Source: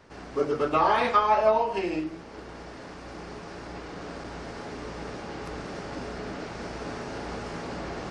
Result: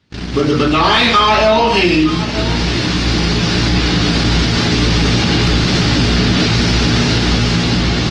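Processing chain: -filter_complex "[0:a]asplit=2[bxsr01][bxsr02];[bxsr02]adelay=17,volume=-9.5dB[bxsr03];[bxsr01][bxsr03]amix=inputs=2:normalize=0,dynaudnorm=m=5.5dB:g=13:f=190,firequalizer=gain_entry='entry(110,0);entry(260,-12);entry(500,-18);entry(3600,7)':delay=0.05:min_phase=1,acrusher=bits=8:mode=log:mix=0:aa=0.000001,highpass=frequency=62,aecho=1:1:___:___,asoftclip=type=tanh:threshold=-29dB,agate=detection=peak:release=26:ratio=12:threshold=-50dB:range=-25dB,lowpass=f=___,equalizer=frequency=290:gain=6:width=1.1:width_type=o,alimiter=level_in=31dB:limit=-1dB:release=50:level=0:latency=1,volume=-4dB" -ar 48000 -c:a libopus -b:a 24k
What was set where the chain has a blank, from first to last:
909, 0.0944, 3600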